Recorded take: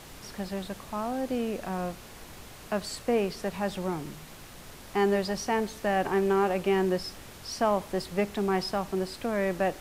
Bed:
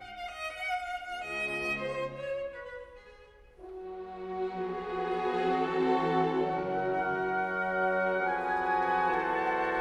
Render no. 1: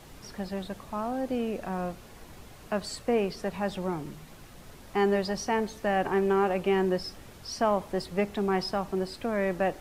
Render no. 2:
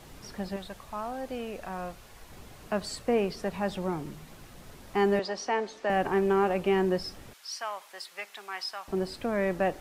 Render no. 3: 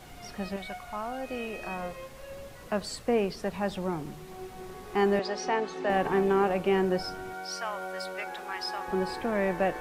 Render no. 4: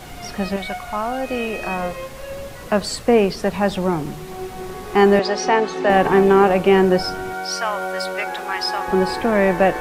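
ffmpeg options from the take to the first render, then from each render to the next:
-af "afftdn=nr=6:nf=-47"
-filter_complex "[0:a]asettb=1/sr,asplit=3[s0][s1][s2];[s0]atrim=end=0.564[s3];[s1]atrim=start=0.56:end=2.32,asetpts=PTS-STARTPTS,afade=t=in:d=0.004:c=qsin,afade=t=out:st=1.756:d=0.004:c=qsin,equalizer=f=240:t=o:w=2.2:g=-8.5[s4];[s2]atrim=start=2.316[s5];[s3][s4]acrossfade=d=0.004:c1=hsin:c2=qsin[s6];[s6][s5]acrossfade=d=0.004:c1=qsin:c2=hsin,asettb=1/sr,asplit=3[s7][s8][s9];[s7]atrim=end=5.194[s10];[s8]atrim=start=5.19:end=5.9,asetpts=PTS-STARTPTS,afade=t=in:d=0.004:c=qsin,afade=t=out:st=0.706:d=0.004:c=qsin,acrossover=split=270 7300:gain=0.0794 1 0.0794[s11][s12][s13];[s11][s12][s13]amix=inputs=3:normalize=0[s14];[s9]atrim=start=5.896[s15];[s10][s14]acrossfade=d=0.004:c1=hsin:c2=qsin[s16];[s16][s15]acrossfade=d=0.004:c1=qsin:c2=hsin,asettb=1/sr,asplit=3[s17][s18][s19];[s17]atrim=end=7.334[s20];[s18]atrim=start=7.33:end=8.88,asetpts=PTS-STARTPTS,afade=t=in:d=0.004:c=qsin,afade=t=out:st=1.546:d=0.004:c=qsin,highpass=1400[s21];[s19]atrim=start=8.876[s22];[s20][s21]acrossfade=d=0.004:c1=hsin:c2=qsin[s23];[s23][s22]acrossfade=d=0.004:c1=qsin:c2=hsin"
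-filter_complex "[1:a]volume=0.355[s0];[0:a][s0]amix=inputs=2:normalize=0"
-af "volume=3.76"

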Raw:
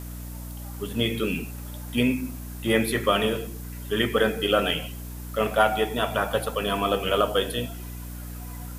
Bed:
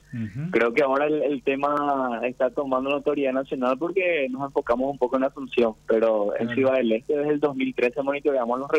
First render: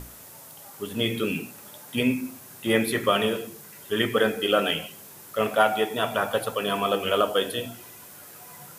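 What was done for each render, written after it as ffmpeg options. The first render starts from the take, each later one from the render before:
-af "bandreject=f=60:t=h:w=6,bandreject=f=120:t=h:w=6,bandreject=f=180:t=h:w=6,bandreject=f=240:t=h:w=6,bandreject=f=300:t=h:w=6"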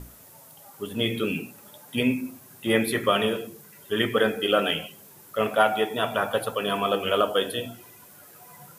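-af "afftdn=nr=6:nf=-46"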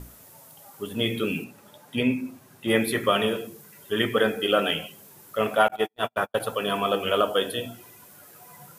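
-filter_complex "[0:a]asettb=1/sr,asplit=3[s0][s1][s2];[s0]atrim=end=1.444[s3];[s1]atrim=start=1.44:end=2.68,asetpts=PTS-STARTPTS,afade=t=in:d=0.004:c=qsin,afade=t=out:st=1.236:d=0.004:c=qsin,highshelf=f=7200:g=-10.5[s4];[s2]atrim=start=2.676[s5];[s3][s4]acrossfade=d=0.004:c1=hsin:c2=qsin[s6];[s6][s5]acrossfade=d=0.004:c1=qsin:c2=hsin,asettb=1/sr,asplit=3[s7][s8][s9];[s7]atrim=end=5.684[s10];[s8]atrim=start=5.68:end=6.4,asetpts=PTS-STARTPTS,afade=t=in:d=0.004:c=qsin,afade=t=out:st=0.716:d=0.004:c=qsin,agate=range=0.00316:threshold=0.0501:ratio=16:release=100:detection=peak[s11];[s9]atrim=start=6.396[s12];[s10][s11]acrossfade=d=0.004:c1=hsin:c2=qsin[s13];[s13][s12]acrossfade=d=0.004:c1=qsin:c2=hsin"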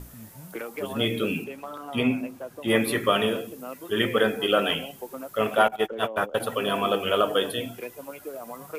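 -filter_complex "[1:a]volume=0.178[s0];[0:a][s0]amix=inputs=2:normalize=0"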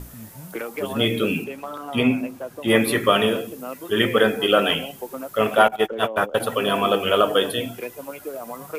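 -af "volume=1.68"

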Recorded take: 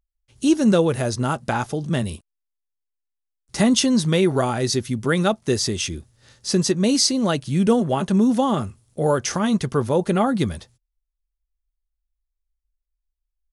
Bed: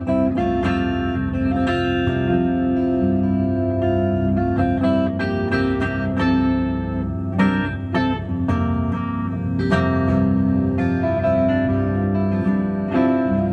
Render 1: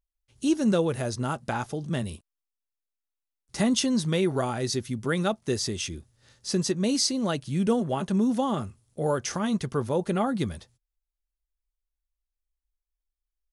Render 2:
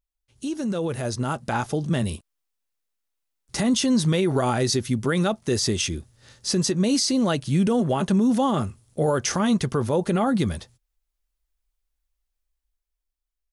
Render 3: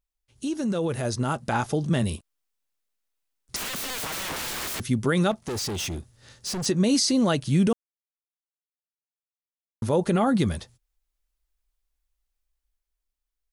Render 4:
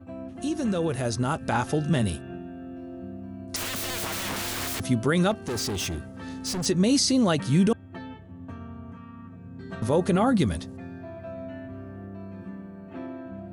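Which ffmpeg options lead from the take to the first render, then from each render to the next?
-af "volume=0.473"
-af "alimiter=limit=0.0891:level=0:latency=1:release=45,dynaudnorm=f=280:g=9:m=2.37"
-filter_complex "[0:a]asettb=1/sr,asplit=3[s0][s1][s2];[s0]atrim=end=3.564[s3];[s1]atrim=start=3.56:end=4.8,asetpts=PTS-STARTPTS,afade=t=in:d=0.004:c=qsin,afade=t=out:st=1.236:d=0.004:c=qsin,aeval=exprs='(mod(22.4*val(0)+1,2)-1)/22.4':c=same[s4];[s2]atrim=start=4.796[s5];[s3][s4]acrossfade=d=0.004:c1=hsin:c2=qsin[s6];[s6][s5]acrossfade=d=0.004:c1=qsin:c2=hsin,asettb=1/sr,asplit=3[s7][s8][s9];[s7]atrim=end=5.314[s10];[s8]atrim=start=5.31:end=6.66,asetpts=PTS-STARTPTS,afade=t=in:d=0.004:c=qsin,afade=t=out:st=1.346:d=0.004:c=qsin,volume=25.1,asoftclip=hard,volume=0.0398[s11];[s9]atrim=start=6.656[s12];[s10][s11]acrossfade=d=0.004:c1=hsin:c2=qsin[s13];[s13][s12]acrossfade=d=0.004:c1=qsin:c2=hsin,asplit=3[s14][s15][s16];[s14]atrim=end=7.73,asetpts=PTS-STARTPTS,afade=t=out:st=7.726:d=0.004:c=hsin[s17];[s15]atrim=start=7.73:end=9.82,asetpts=PTS-STARTPTS,volume=0[s18];[s16]atrim=start=9.82,asetpts=PTS-STARTPTS,afade=t=in:d=0.004:c=hsin[s19];[s17][s18][s19]concat=n=3:v=0:a=1"
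-filter_complex "[1:a]volume=0.1[s0];[0:a][s0]amix=inputs=2:normalize=0"

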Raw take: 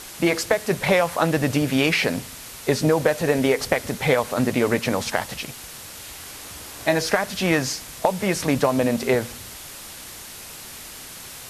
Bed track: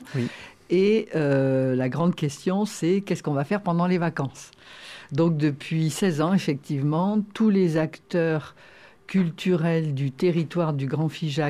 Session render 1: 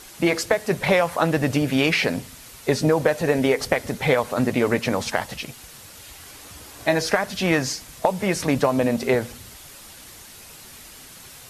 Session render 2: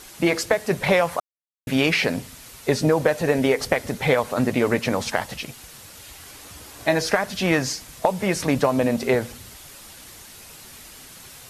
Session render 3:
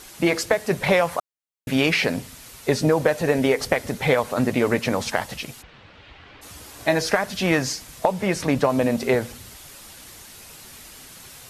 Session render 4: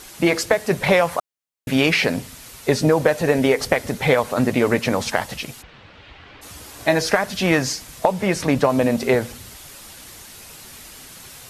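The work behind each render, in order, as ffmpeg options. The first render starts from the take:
-af "afftdn=nr=6:nf=-39"
-filter_complex "[0:a]asplit=3[s0][s1][s2];[s0]atrim=end=1.2,asetpts=PTS-STARTPTS,afade=t=out:st=1.196:d=0.004:c=hsin[s3];[s1]atrim=start=1.2:end=1.67,asetpts=PTS-STARTPTS,volume=0[s4];[s2]atrim=start=1.67,asetpts=PTS-STARTPTS,afade=t=in:d=0.004:c=hsin[s5];[s3][s4][s5]concat=n=3:v=0:a=1"
-filter_complex "[0:a]asplit=3[s0][s1][s2];[s0]afade=t=out:st=5.61:d=0.02[s3];[s1]lowpass=f=3300:w=0.5412,lowpass=f=3300:w=1.3066,afade=t=in:st=5.61:d=0.02,afade=t=out:st=6.41:d=0.02[s4];[s2]afade=t=in:st=6.41:d=0.02[s5];[s3][s4][s5]amix=inputs=3:normalize=0,asettb=1/sr,asplit=3[s6][s7][s8];[s6]atrim=end=8.054[s9];[s7]atrim=start=8.05:end=8.7,asetpts=PTS-STARTPTS,afade=t=in:d=0.004:c=qsin,afade=t=out:st=0.646:d=0.004:c=qsin,highshelf=f=6000:g=-5[s10];[s8]atrim=start=8.696[s11];[s9][s10]acrossfade=d=0.004:c1=hsin:c2=qsin[s12];[s12][s11]acrossfade=d=0.004:c1=qsin:c2=hsin"
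-af "volume=1.33"

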